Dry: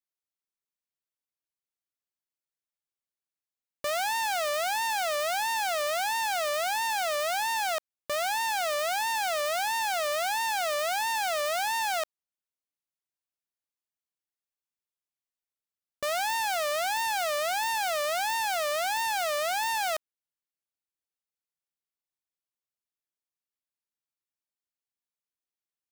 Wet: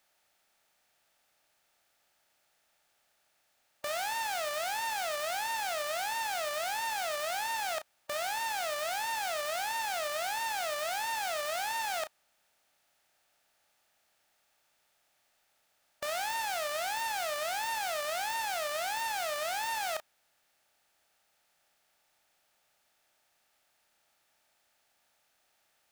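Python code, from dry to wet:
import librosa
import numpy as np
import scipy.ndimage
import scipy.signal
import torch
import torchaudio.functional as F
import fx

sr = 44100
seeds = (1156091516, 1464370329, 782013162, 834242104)

y = fx.bin_compress(x, sr, power=0.6)
y = fx.doubler(y, sr, ms=33.0, db=-10)
y = y * librosa.db_to_amplitude(-7.0)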